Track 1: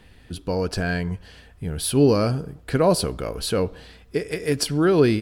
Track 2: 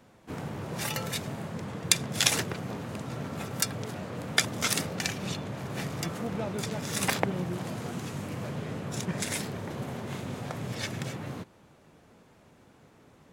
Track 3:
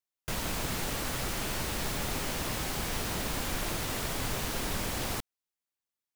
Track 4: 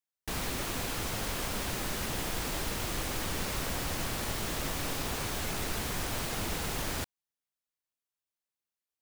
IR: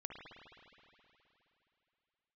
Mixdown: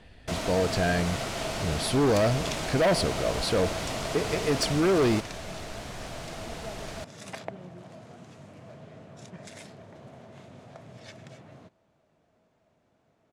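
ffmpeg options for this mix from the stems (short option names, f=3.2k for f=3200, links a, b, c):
-filter_complex "[0:a]volume=-2dB[a];[1:a]adelay=250,volume=-13dB[b];[2:a]highpass=85,bandreject=f=1.7k:w=12,volume=0.5dB[c];[3:a]volume=-5.5dB[d];[a][b][c][d]amix=inputs=4:normalize=0,lowpass=7.6k,equalizer=f=650:w=6:g=11.5,volume=19.5dB,asoftclip=hard,volume=-19.5dB"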